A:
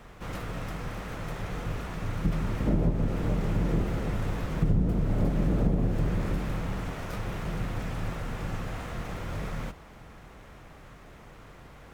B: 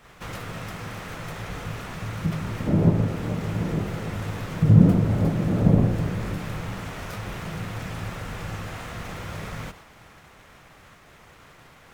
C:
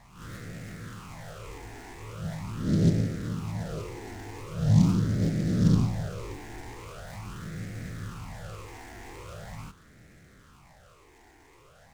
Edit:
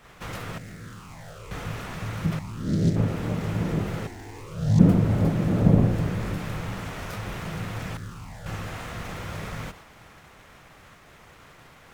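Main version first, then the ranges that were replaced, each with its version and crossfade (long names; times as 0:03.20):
B
0:00.58–0:01.51: punch in from C
0:02.39–0:02.96: punch in from C
0:04.07–0:04.79: punch in from C
0:07.97–0:08.46: punch in from C
not used: A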